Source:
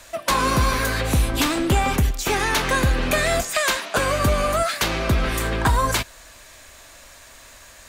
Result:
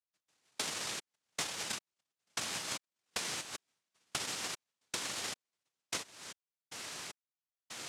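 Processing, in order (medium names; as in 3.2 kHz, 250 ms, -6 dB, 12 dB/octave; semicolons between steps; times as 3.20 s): 0.44–2.12 s: comb 4.6 ms, depth 96%; trance gate "...xx..xx" 76 bpm -60 dB; high-pass sweep 290 Hz -> 3.8 kHz, 3.40–6.05 s; noise-vocoded speech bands 1; compression 16:1, threshold -37 dBFS, peak gain reduction 27 dB; trim +1 dB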